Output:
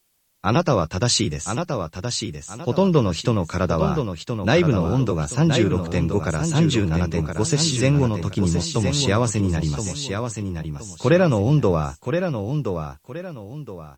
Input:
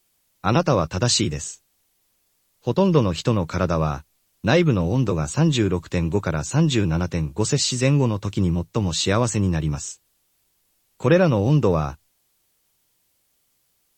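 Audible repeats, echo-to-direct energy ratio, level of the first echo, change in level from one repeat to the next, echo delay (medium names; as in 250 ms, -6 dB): 2, -6.0 dB, -6.5 dB, -10.0 dB, 1021 ms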